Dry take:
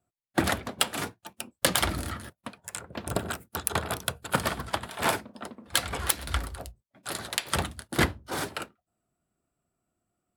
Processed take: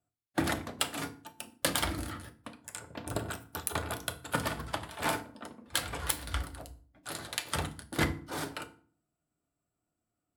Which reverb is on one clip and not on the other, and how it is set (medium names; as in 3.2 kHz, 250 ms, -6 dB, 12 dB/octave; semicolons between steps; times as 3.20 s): FDN reverb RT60 0.44 s, low-frequency decay 1.55×, high-frequency decay 0.75×, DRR 7 dB; trim -6 dB